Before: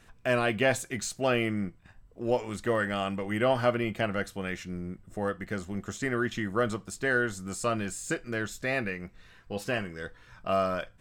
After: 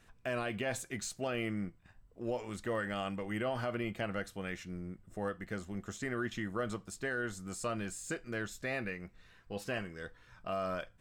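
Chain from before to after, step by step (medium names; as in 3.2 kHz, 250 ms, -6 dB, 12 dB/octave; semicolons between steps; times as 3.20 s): peak limiter -20 dBFS, peak gain reduction 7.5 dB; trim -6 dB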